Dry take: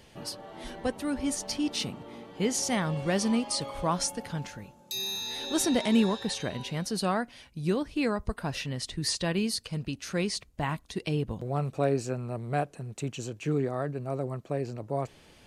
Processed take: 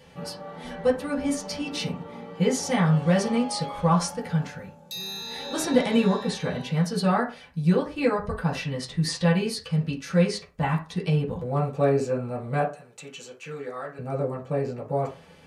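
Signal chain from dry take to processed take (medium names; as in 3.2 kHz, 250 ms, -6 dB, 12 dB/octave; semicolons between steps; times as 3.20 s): 12.69–13.99 s: high-pass 1.4 kHz 6 dB/octave; reverberation RT60 0.35 s, pre-delay 3 ms, DRR -6.5 dB; trim -2.5 dB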